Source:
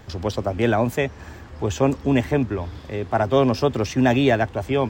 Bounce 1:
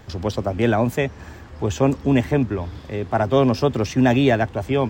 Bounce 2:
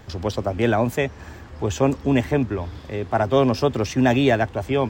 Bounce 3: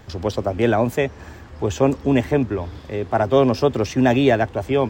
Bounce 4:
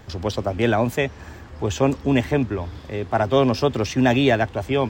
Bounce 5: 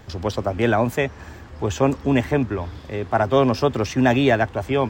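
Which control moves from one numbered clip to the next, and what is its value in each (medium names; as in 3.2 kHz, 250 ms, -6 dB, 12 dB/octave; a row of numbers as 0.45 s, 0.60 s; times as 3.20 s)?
dynamic bell, frequency: 170 Hz, 10 kHz, 440 Hz, 3.5 kHz, 1.3 kHz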